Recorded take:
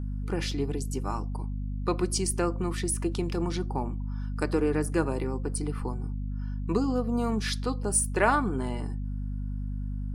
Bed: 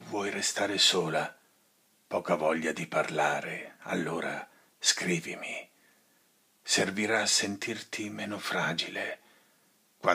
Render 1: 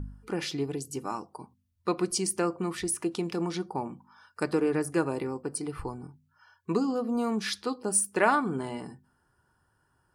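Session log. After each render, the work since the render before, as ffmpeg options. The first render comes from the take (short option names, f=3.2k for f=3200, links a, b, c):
-af "bandreject=f=50:t=h:w=4,bandreject=f=100:t=h:w=4,bandreject=f=150:t=h:w=4,bandreject=f=200:t=h:w=4,bandreject=f=250:t=h:w=4"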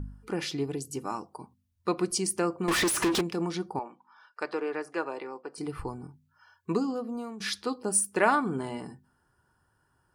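-filter_complex "[0:a]asettb=1/sr,asplit=3[a][b][c];[a]atrim=end=2.684[d];[b]atrim=start=2.68:end=3.21,asetpts=PTS-STARTPTS,afade=t=in:d=0.004:c=qsin,afade=t=out:st=0.526:d=0.004:c=qsin,asplit=2[e][f];[f]highpass=f=720:p=1,volume=36dB,asoftclip=type=tanh:threshold=-18.5dB[g];[e][g]amix=inputs=2:normalize=0,lowpass=f=5.5k:p=1,volume=-6dB[h];[c]atrim=start=3.206[i];[d][h]acrossfade=d=0.004:c1=hsin:c2=qsin[j];[j][i]acrossfade=d=0.004:c1=qsin:c2=hsin,asettb=1/sr,asplit=3[k][l][m];[k]atrim=end=3.794[n];[l]atrim=start=3.79:end=5.58,asetpts=PTS-STARTPTS,afade=t=in:d=0.004:c=qsin,afade=t=out:st=1.786:d=0.004:c=qsin,highpass=520,lowpass=4.2k[o];[m]atrim=start=5.576[p];[n][o]acrossfade=d=0.004:c1=hsin:c2=qsin[q];[q][p]acrossfade=d=0.004:c1=qsin:c2=hsin,asplit=2[r][s];[r]atrim=end=7.4,asetpts=PTS-STARTPTS,afade=t=out:st=6.7:d=0.7:silence=0.177828[t];[s]atrim=start=7.4,asetpts=PTS-STARTPTS,afade=t=in:d=0.004:c=hsin:silence=0.177828[u];[t][u]concat=n=2:v=0:a=1"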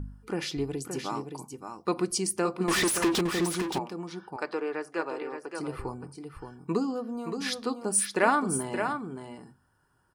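-af "aecho=1:1:572:0.447"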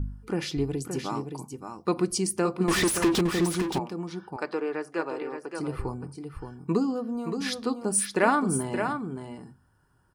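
-af "lowshelf=f=250:g=7.5"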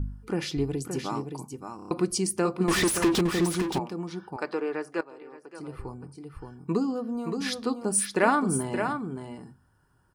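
-filter_complex "[0:a]asplit=7[a][b][c][d][e][f][g];[a]atrim=end=1.792[h];[b]atrim=start=1.758:end=1.792[i];[c]atrim=start=1.758:end=1.792[j];[d]atrim=start=1.758:end=1.792[k];[e]atrim=start=1.758:end=1.792[l];[f]atrim=start=1.908:end=5.01,asetpts=PTS-STARTPTS,afade=t=out:st=3.098:d=0.004:c=hsin:silence=0.16788[m];[g]atrim=start=5.01,asetpts=PTS-STARTPTS,afade=t=in:d=2.14:silence=0.16788[n];[h][i]acrossfade=d=0.004:c1=hsin:c2=hsin[o];[o][j]acrossfade=d=0.004:c1=hsin:c2=hsin[p];[p][k]acrossfade=d=0.004:c1=hsin:c2=hsin[q];[q][l]acrossfade=d=0.004:c1=hsin:c2=hsin[r];[m][n]concat=n=2:v=0:a=1[s];[r][s]acrossfade=d=0.004:c1=hsin:c2=hsin"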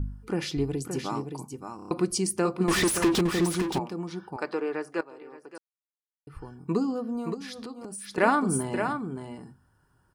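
-filter_complex "[0:a]asettb=1/sr,asplit=3[a][b][c];[a]atrim=end=7.344[d];[b]atrim=start=7.34:end=8.18,asetpts=PTS-STARTPTS,afade=t=in:d=0.004:c=qsin,afade=t=out:st=0.836:d=0.004:c=qsin,acompressor=threshold=-35dB:ratio=16:attack=3.2:release=140:knee=1:detection=peak[e];[c]atrim=start=8.176[f];[d][e]acrossfade=d=0.004:c1=hsin:c2=qsin[g];[g][f]acrossfade=d=0.004:c1=qsin:c2=hsin,asplit=3[h][i][j];[h]atrim=end=5.58,asetpts=PTS-STARTPTS,afade=t=out:st=5.576:d=0.004:c=hsin[k];[i]atrim=start=5.58:end=6.27,asetpts=PTS-STARTPTS,volume=0[l];[j]atrim=start=6.27,asetpts=PTS-STARTPTS,afade=t=in:d=0.004:c=hsin[m];[k][l][m]concat=n=3:v=0:a=1"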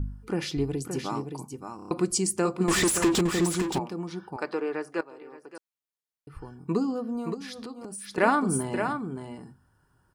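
-filter_complex "[0:a]asettb=1/sr,asplit=3[a][b][c];[a]atrim=end=1.984[d];[b]atrim=start=1.98:end=3.75,asetpts=PTS-STARTPTS,afade=t=in:d=0.004:c=qsin,afade=t=out:st=1.766:d=0.004:c=qsin,equalizer=f=7.4k:t=o:w=0.24:g=10[e];[c]atrim=start=3.746[f];[d][e]acrossfade=d=0.004:c1=hsin:c2=qsin[g];[g][f]acrossfade=d=0.004:c1=qsin:c2=hsin"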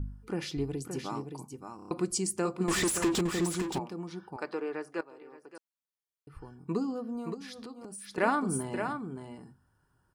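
-af "volume=-5dB"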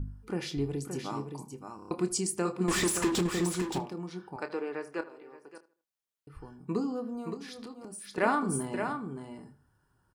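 -filter_complex "[0:a]asplit=2[a][b];[b]adelay=28,volume=-11dB[c];[a][c]amix=inputs=2:normalize=0,asplit=2[d][e];[e]adelay=78,lowpass=f=2.7k:p=1,volume=-17dB,asplit=2[f][g];[g]adelay=78,lowpass=f=2.7k:p=1,volume=0.36,asplit=2[h][i];[i]adelay=78,lowpass=f=2.7k:p=1,volume=0.36[j];[d][f][h][j]amix=inputs=4:normalize=0"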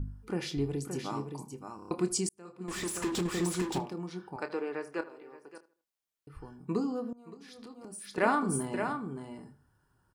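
-filter_complex "[0:a]asplit=3[a][b][c];[a]atrim=end=2.29,asetpts=PTS-STARTPTS,afade=t=out:st=2.286:d=0.004:c=hsin[d];[b]atrim=start=2.29:end=7.13,asetpts=PTS-STARTPTS,afade=t=in:d=1.34,afade=t=out:st=4.836:d=0.004:c=hsin:silence=0.0841395[e];[c]atrim=start=7.13,asetpts=PTS-STARTPTS,afade=t=in:d=0.91:silence=0.0841395[f];[d][e][f]concat=n=3:v=0:a=1"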